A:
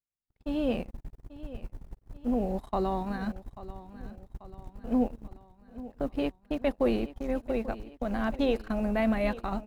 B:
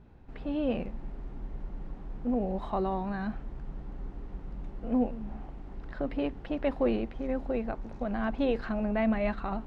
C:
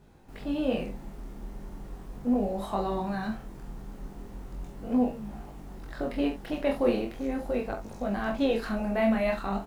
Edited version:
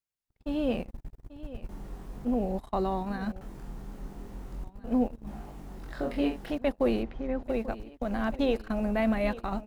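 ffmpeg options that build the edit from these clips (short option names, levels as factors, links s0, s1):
-filter_complex "[2:a]asplit=3[s0][s1][s2];[0:a]asplit=5[s3][s4][s5][s6][s7];[s3]atrim=end=1.692[s8];[s0]atrim=start=1.688:end=2.252[s9];[s4]atrim=start=2.248:end=3.412[s10];[s1]atrim=start=3.408:end=4.642[s11];[s5]atrim=start=4.638:end=5.272[s12];[s2]atrim=start=5.268:end=6.532[s13];[s6]atrim=start=6.528:end=7.032[s14];[1:a]atrim=start=7.028:end=7.432[s15];[s7]atrim=start=7.428[s16];[s8][s9]acrossfade=d=0.004:c1=hsin:c2=hsin[s17];[s17][s10]acrossfade=d=0.004:c1=hsin:c2=hsin[s18];[s18][s11]acrossfade=d=0.004:c1=hsin:c2=hsin[s19];[s19][s12]acrossfade=d=0.004:c1=hsin:c2=hsin[s20];[s20][s13]acrossfade=d=0.004:c1=hsin:c2=hsin[s21];[s21][s14]acrossfade=d=0.004:c1=hsin:c2=hsin[s22];[s22][s15]acrossfade=d=0.004:c1=hsin:c2=hsin[s23];[s23][s16]acrossfade=d=0.004:c1=hsin:c2=hsin"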